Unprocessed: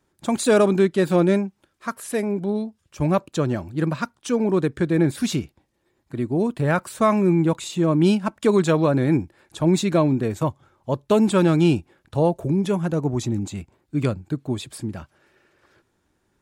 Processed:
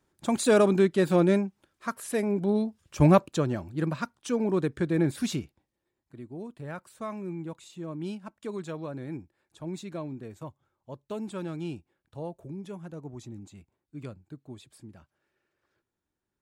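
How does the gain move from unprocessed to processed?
2.17 s -4 dB
3.06 s +3 dB
3.49 s -6 dB
5.26 s -6 dB
6.23 s -18 dB

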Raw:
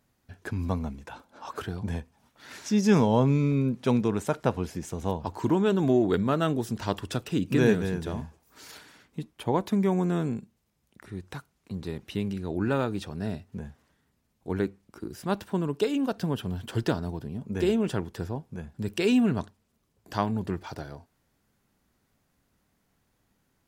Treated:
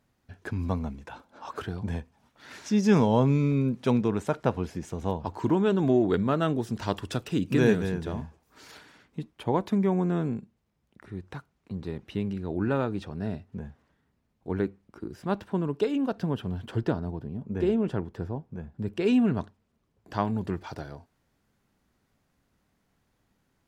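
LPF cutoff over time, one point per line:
LPF 6 dB/oct
5200 Hz
from 3.01 s 8700 Hz
from 3.9 s 4000 Hz
from 6.73 s 8900 Hz
from 7.92 s 3900 Hz
from 9.78 s 2300 Hz
from 16.75 s 1200 Hz
from 19.06 s 2500 Hz
from 20.25 s 6100 Hz

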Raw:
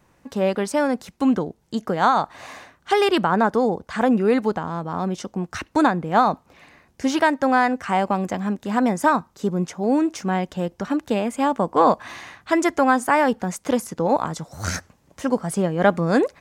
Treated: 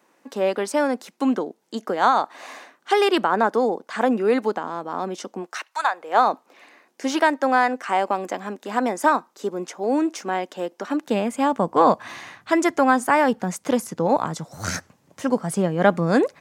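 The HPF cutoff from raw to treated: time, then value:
HPF 24 dB/oct
5.39 s 250 Hz
5.76 s 1000 Hz
6.26 s 280 Hz
10.92 s 280 Hz
11.32 s 100 Hz

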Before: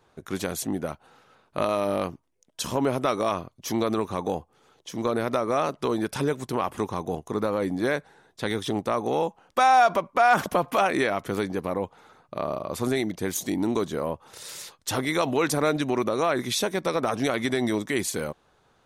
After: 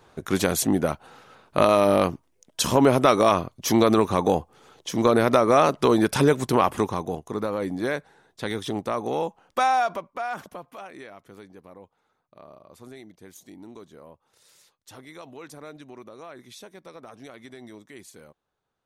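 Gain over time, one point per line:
6.64 s +7 dB
7.21 s -1.5 dB
9.61 s -1.5 dB
10.01 s -8 dB
10.76 s -18.5 dB

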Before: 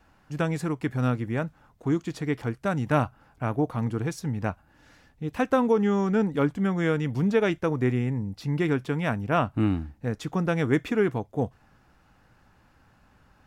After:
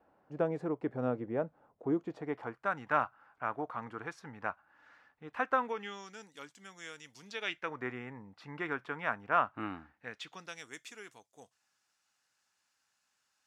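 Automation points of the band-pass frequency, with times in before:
band-pass, Q 1.5
2.03 s 530 Hz
2.72 s 1300 Hz
5.54 s 1300 Hz
6.17 s 6400 Hz
7.18 s 6400 Hz
7.83 s 1300 Hz
9.86 s 1300 Hz
10.64 s 7100 Hz

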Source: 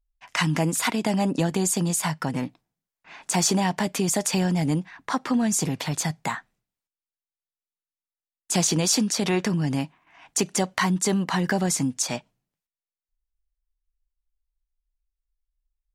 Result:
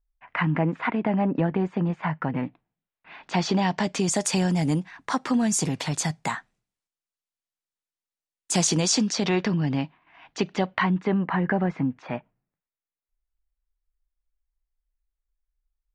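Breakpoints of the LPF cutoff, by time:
LPF 24 dB/oct
2.02 s 2200 Hz
3.55 s 4500 Hz
4.26 s 10000 Hz
8.6 s 10000 Hz
9.6 s 4100 Hz
10.46 s 4100 Hz
11.23 s 2200 Hz

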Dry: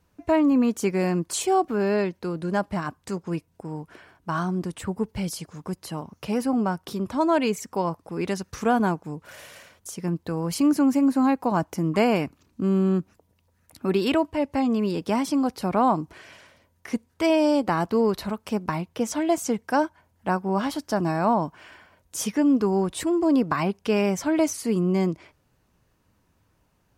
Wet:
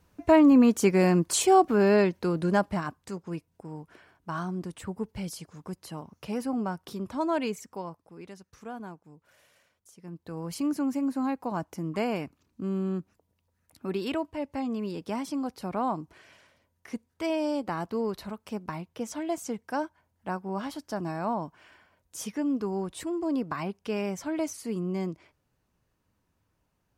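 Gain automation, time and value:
2.47 s +2 dB
3.11 s -6.5 dB
7.44 s -6.5 dB
8.31 s -18.5 dB
9.98 s -18.5 dB
10.38 s -8.5 dB

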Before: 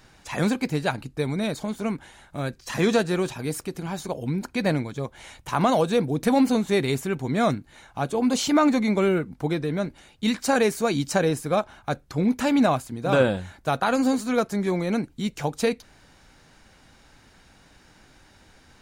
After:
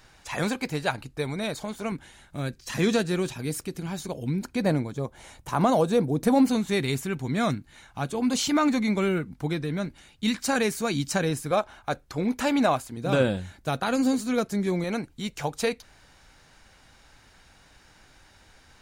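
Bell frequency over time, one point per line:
bell -6 dB 2 oct
220 Hz
from 1.92 s 820 Hz
from 4.56 s 2600 Hz
from 6.46 s 560 Hz
from 11.51 s 160 Hz
from 12.97 s 940 Hz
from 14.84 s 240 Hz

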